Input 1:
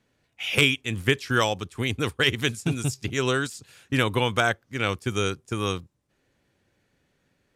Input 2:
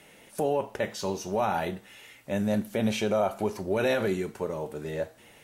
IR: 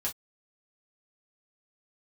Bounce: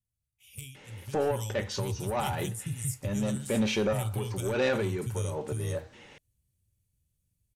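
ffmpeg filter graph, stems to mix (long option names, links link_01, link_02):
-filter_complex "[0:a]firequalizer=gain_entry='entry(110,0);entry(230,-19);entry(1600,-26);entry(9400,2)':delay=0.05:min_phase=1,aexciter=amount=3.9:drive=3.2:freq=2300,bass=frequency=250:gain=6,treble=frequency=4000:gain=-8,volume=-7.5dB,afade=type=in:start_time=1.12:duration=0.35:silence=0.298538,asplit=3[link_01][link_02][link_03];[link_02]volume=-10.5dB[link_04];[1:a]lowpass=frequency=6700:width=0.5412,lowpass=frequency=6700:width=1.3066,asoftclip=type=tanh:threshold=-22.5dB,adelay=750,volume=2.5dB[link_05];[link_03]apad=whole_len=272546[link_06];[link_05][link_06]sidechaincompress=threshold=-38dB:ratio=8:attack=16:release=204[link_07];[2:a]atrim=start_sample=2205[link_08];[link_04][link_08]afir=irnorm=-1:irlink=0[link_09];[link_01][link_07][link_09]amix=inputs=3:normalize=0,asuperstop=centerf=670:order=4:qfactor=6.9"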